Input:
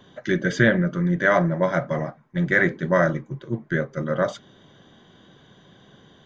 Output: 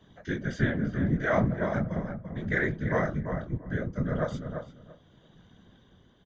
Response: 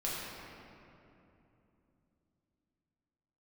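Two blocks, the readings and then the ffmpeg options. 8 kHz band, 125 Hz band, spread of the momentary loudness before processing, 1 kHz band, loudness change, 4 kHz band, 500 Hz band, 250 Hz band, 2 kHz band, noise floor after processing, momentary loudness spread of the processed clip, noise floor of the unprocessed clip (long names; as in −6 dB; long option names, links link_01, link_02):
can't be measured, −4.0 dB, 10 LU, −8.0 dB, −7.5 dB, −10.5 dB, −8.5 dB, −6.0 dB, −9.5 dB, −60 dBFS, 10 LU, −54 dBFS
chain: -filter_complex "[0:a]equalizer=frequency=140:width_type=o:width=0.38:gain=12,tremolo=f=0.73:d=0.35,flanger=delay=20:depth=3.1:speed=0.42,afftfilt=real='hypot(re,im)*cos(2*PI*random(0))':imag='hypot(re,im)*sin(2*PI*random(1))':win_size=512:overlap=0.75,asplit=2[link_01][link_02];[link_02]adelay=340,lowpass=frequency=1800:poles=1,volume=-6.5dB,asplit=2[link_03][link_04];[link_04]adelay=340,lowpass=frequency=1800:poles=1,volume=0.18,asplit=2[link_05][link_06];[link_06]adelay=340,lowpass=frequency=1800:poles=1,volume=0.18[link_07];[link_03][link_05][link_07]amix=inputs=3:normalize=0[link_08];[link_01][link_08]amix=inputs=2:normalize=0"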